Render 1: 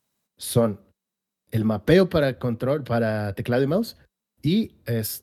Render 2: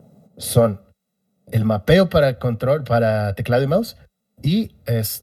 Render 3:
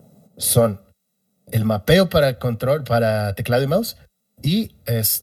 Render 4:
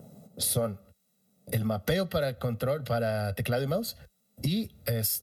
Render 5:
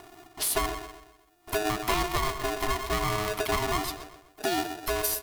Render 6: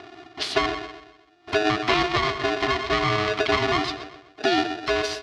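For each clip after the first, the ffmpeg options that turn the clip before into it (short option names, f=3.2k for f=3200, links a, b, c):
-filter_complex "[0:a]aecho=1:1:1.5:0.74,acrossover=split=100|560|2300[a][b][c][d];[b]acompressor=mode=upward:threshold=-28dB:ratio=2.5[e];[a][e][c][d]amix=inputs=4:normalize=0,volume=3dB"
-af "highshelf=f=4.1k:g=10,volume=-1dB"
-af "acompressor=threshold=-29dB:ratio=3"
-filter_complex "[0:a]asplit=2[a][b];[b]adelay=126,lowpass=f=2.1k:p=1,volume=-8.5dB,asplit=2[c][d];[d]adelay=126,lowpass=f=2.1k:p=1,volume=0.44,asplit=2[e][f];[f]adelay=126,lowpass=f=2.1k:p=1,volume=0.44,asplit=2[g][h];[h]adelay=126,lowpass=f=2.1k:p=1,volume=0.44,asplit=2[i][j];[j]adelay=126,lowpass=f=2.1k:p=1,volume=0.44[k];[c][e][g][i][k]amix=inputs=5:normalize=0[l];[a][l]amix=inputs=2:normalize=0,aeval=exprs='val(0)*sgn(sin(2*PI*530*n/s))':c=same"
-af "highpass=110,equalizer=f=180:t=q:w=4:g=-9,equalizer=f=540:t=q:w=4:g=-6,equalizer=f=950:t=q:w=4:g=-8,lowpass=f=4.7k:w=0.5412,lowpass=f=4.7k:w=1.3066,volume=8.5dB"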